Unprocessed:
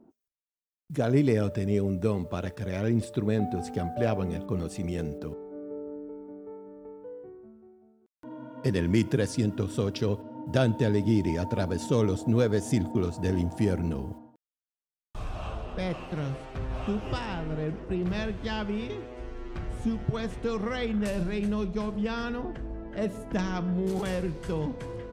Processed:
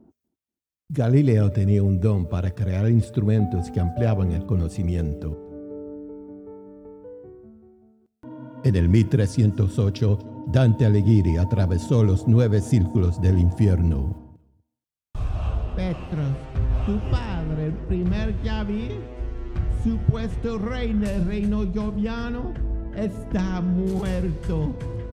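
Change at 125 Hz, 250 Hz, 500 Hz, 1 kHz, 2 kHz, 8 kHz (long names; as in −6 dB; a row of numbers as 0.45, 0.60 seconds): +10.5 dB, +5.0 dB, +1.5 dB, +0.5 dB, 0.0 dB, can't be measured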